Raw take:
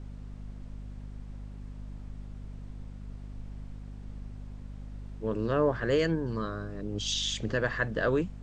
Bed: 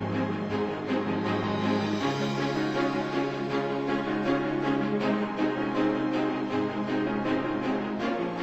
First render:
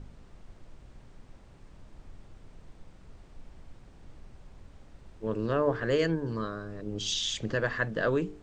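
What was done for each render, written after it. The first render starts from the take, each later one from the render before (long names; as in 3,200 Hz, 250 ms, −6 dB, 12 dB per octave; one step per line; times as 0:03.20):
hum removal 50 Hz, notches 9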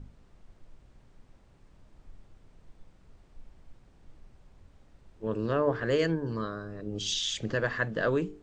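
noise reduction from a noise print 6 dB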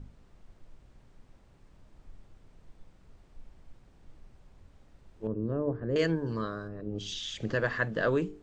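0:05.27–0:05.96: drawn EQ curve 290 Hz 0 dB, 1,300 Hz −16 dB, 3,200 Hz −26 dB
0:06.67–0:07.39: high-shelf EQ 2,200 Hz → 3,600 Hz −12 dB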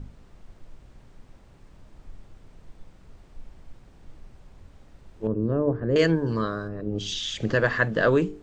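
level +7 dB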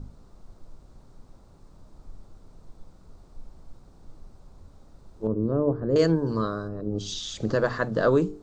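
flat-topped bell 2,300 Hz −10 dB 1.2 octaves
mains-hum notches 60/120 Hz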